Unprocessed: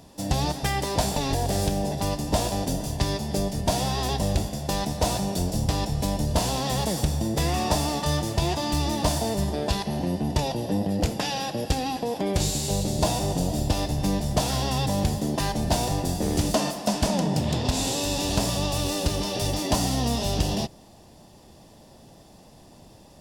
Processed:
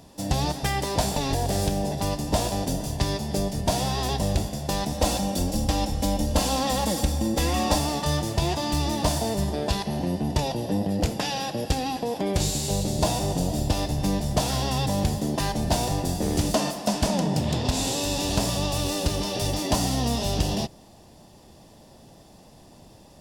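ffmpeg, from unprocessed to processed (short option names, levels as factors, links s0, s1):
-filter_complex "[0:a]asettb=1/sr,asplit=3[s0][s1][s2];[s0]atrim=end=4.924[s3];[s1]atrim=start=4.92:end=7.79,asetpts=PTS-STARTPTS,afade=t=in:d=0.004:c=qsin,afade=t=out:st=2.866:d=0.004:c=qsin,aecho=1:1:3.7:0.65,atrim=end_sample=126567[s4];[s2]atrim=start=7.786[s5];[s3][s4]acrossfade=d=0.004:c1=hsin:c2=qsin[s6];[s6][s5]acrossfade=d=0.004:c1=qsin:c2=hsin"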